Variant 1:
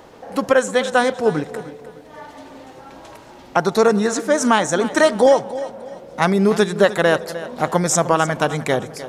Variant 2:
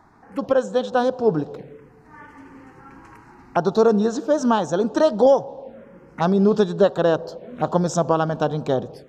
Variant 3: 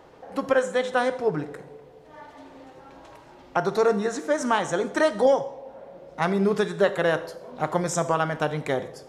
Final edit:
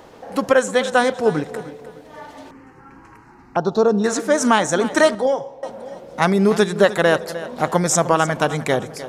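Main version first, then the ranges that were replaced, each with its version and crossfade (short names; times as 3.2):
1
2.51–4.04 from 2
5.15–5.63 from 3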